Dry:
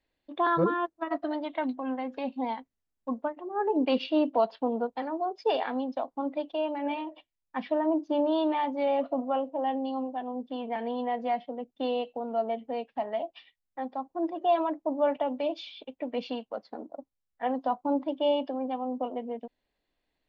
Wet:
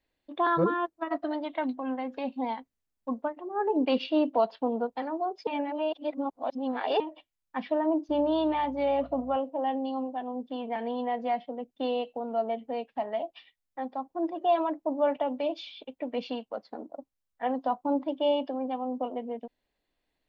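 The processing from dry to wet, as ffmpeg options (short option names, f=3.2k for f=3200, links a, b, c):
-filter_complex "[0:a]asettb=1/sr,asplit=3[a][b][c];[a]atrim=end=8.094[d];[b]atrim=start=8.09:end=9.37,asetpts=PTS-STARTPTS,afade=t=in:d=0.004:c=qsin,afade=t=out:st=1.276:d=0.004:c=qsin,aeval=exprs='val(0)+0.00282*(sin(2*PI*60*n/s)+sin(2*PI*2*60*n/s)/2+sin(2*PI*3*60*n/s)/3+sin(2*PI*4*60*n/s)/4+sin(2*PI*5*60*n/s)/5)':c=same[e];[c]atrim=start=9.366[f];[d][e]acrossfade=d=0.004:c1=hsin:c2=qsin[g];[g][f]acrossfade=d=0.004:c1=qsin:c2=hsin,asplit=3[h][i][j];[h]atrim=end=5.472[k];[i]atrim=start=5.468:end=7.002,asetpts=PTS-STARTPTS,areverse[l];[j]atrim=start=6.998[m];[k][l]acrossfade=d=0.004:c1=hsin:c2=hsin[n];[n][m]acrossfade=d=0.004:c1=hsin:c2=hsin"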